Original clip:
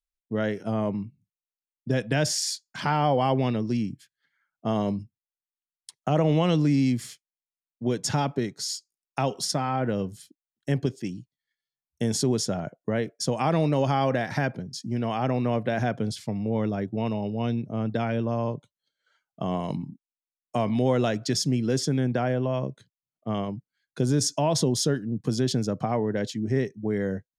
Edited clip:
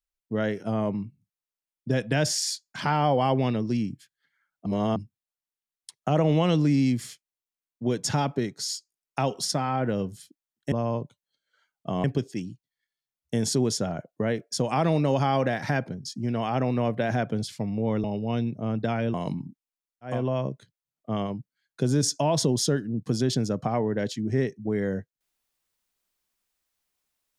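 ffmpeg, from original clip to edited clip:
-filter_complex "[0:a]asplit=8[a][b][c][d][e][f][g][h];[a]atrim=end=4.662[i];[b]atrim=start=4.658:end=4.962,asetpts=PTS-STARTPTS,areverse[j];[c]atrim=start=4.958:end=10.722[k];[d]atrim=start=18.248:end=19.572[l];[e]atrim=start=10.718:end=16.722[m];[f]atrim=start=17.148:end=18.252[n];[g]atrim=start=19.568:end=20.68[o];[h]atrim=start=22.19[p];[i][j]acrossfade=d=0.004:c1=hsin:c2=hsin[q];[q][k]acrossfade=d=0.004:c1=hsin:c2=hsin[r];[r][l]acrossfade=d=0.004:c1=hsin:c2=hsin[s];[s][m]acrossfade=d=0.004:c1=hsin:c2=hsin[t];[t][n]acrossfade=d=0.004:c1=hsin:c2=hsin[u];[u][o]acrossfade=d=0.004:c1=hsin:c2=hsin[v];[v][p]acrossfade=d=0.24:c1=tri:c2=tri"

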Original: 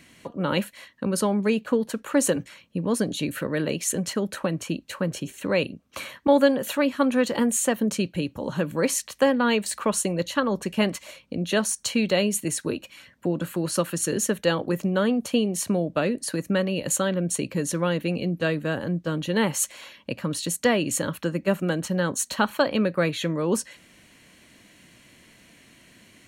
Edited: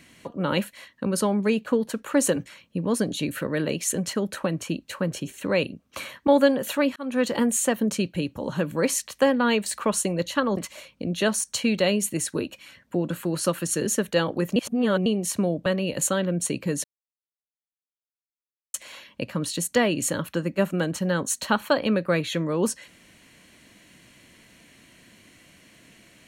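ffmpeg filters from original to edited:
-filter_complex "[0:a]asplit=8[a][b][c][d][e][f][g][h];[a]atrim=end=6.96,asetpts=PTS-STARTPTS,afade=t=out:st=6.956:d=0.004:c=hsin[i];[b]atrim=start=6.96:end=10.572,asetpts=PTS-STARTPTS,afade=t=in:d=0.28[j];[c]atrim=start=10.878:end=14.872[k];[d]atrim=start=14.868:end=15.372,asetpts=PTS-STARTPTS,areverse[l];[e]atrim=start=15.368:end=15.972[m];[f]atrim=start=16.548:end=17.73,asetpts=PTS-STARTPTS,afade=t=out:st=1.178:d=0.004:c=hsin[n];[g]atrim=start=17.73:end=19.63,asetpts=PTS-STARTPTS,volume=0[o];[h]atrim=start=19.63,asetpts=PTS-STARTPTS,afade=t=in:d=0.004:c=hsin[p];[i][j]concat=n=2:v=0:a=1[q];[q][k]acrossfade=d=0.004:c1=hsin:c2=hsin[r];[r][l]acrossfade=d=0.004:c1=hsin:c2=hsin[s];[s][m]acrossfade=d=0.004:c1=hsin:c2=hsin[t];[n][o][p]concat=n=3:v=0:a=1[u];[t][u]acrossfade=d=0.004:c1=hsin:c2=hsin"

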